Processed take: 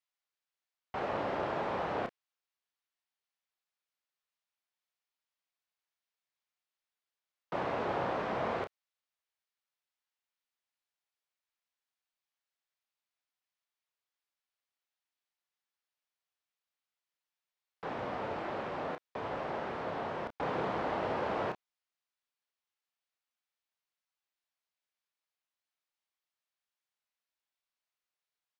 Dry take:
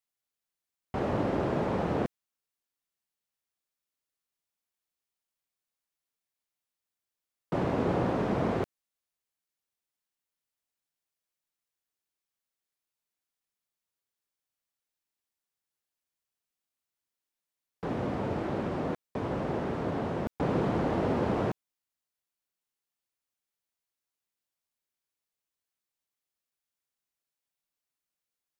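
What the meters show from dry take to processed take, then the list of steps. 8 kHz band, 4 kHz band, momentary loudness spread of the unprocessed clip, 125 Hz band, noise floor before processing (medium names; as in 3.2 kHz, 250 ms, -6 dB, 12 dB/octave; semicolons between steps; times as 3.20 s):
no reading, -0.5 dB, 7 LU, -13.0 dB, under -85 dBFS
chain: three-band isolator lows -14 dB, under 540 Hz, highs -13 dB, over 5.3 kHz; doubling 31 ms -8 dB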